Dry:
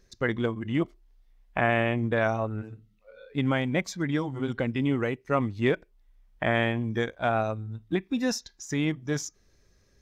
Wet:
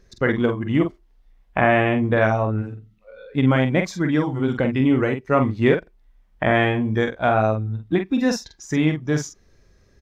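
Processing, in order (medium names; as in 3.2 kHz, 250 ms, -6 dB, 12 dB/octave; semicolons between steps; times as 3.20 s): treble shelf 3.5 kHz -8 dB; doubling 46 ms -6.5 dB; trim +7 dB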